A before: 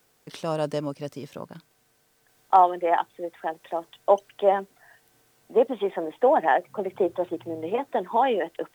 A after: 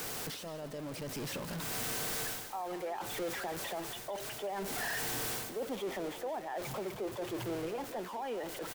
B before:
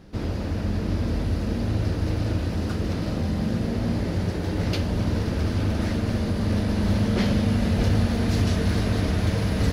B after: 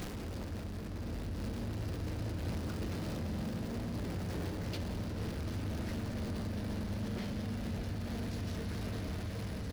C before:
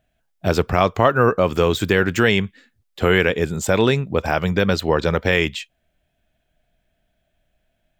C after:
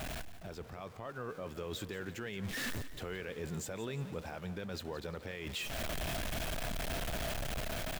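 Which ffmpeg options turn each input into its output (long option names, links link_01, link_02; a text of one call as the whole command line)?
ffmpeg -i in.wav -filter_complex "[0:a]aeval=exprs='val(0)+0.5*0.0473*sgn(val(0))':channel_layout=same,areverse,acompressor=threshold=-26dB:ratio=16,areverse,alimiter=level_in=2.5dB:limit=-24dB:level=0:latency=1:release=240,volume=-2.5dB,asplit=5[link_01][link_02][link_03][link_04][link_05];[link_02]adelay=174,afreqshift=32,volume=-14.5dB[link_06];[link_03]adelay=348,afreqshift=64,volume=-22dB[link_07];[link_04]adelay=522,afreqshift=96,volume=-29.6dB[link_08];[link_05]adelay=696,afreqshift=128,volume=-37.1dB[link_09];[link_01][link_06][link_07][link_08][link_09]amix=inputs=5:normalize=0,dynaudnorm=framelen=270:gausssize=9:maxgain=3.5dB,volume=-7.5dB" out.wav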